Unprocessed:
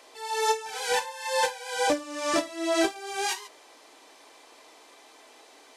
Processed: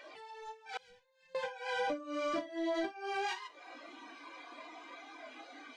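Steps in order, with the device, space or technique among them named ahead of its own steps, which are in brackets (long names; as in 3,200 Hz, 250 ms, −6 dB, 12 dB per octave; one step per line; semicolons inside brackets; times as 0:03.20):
AM radio (band-pass filter 110–3,200 Hz; downward compressor 4 to 1, threshold −44 dBFS, peak gain reduction 20 dB; soft clipping −34 dBFS, distortion −22 dB)
noise reduction from a noise print of the clip's start 15 dB
0:00.77–0:01.35: guitar amp tone stack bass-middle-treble 10-0-1
level +9 dB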